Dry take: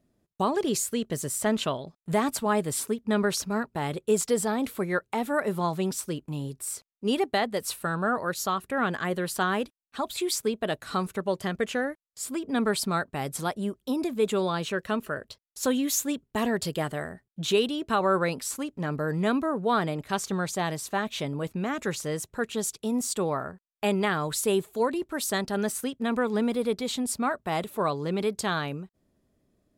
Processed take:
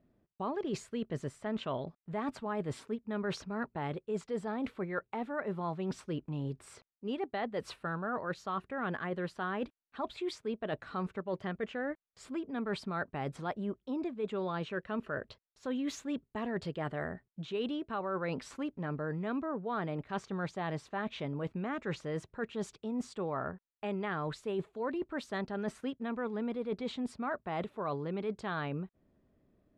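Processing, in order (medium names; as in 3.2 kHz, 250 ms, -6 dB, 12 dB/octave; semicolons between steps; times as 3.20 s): low-pass 2.5 kHz 12 dB/octave; reverse; compression, threshold -33 dBFS, peak gain reduction 14 dB; reverse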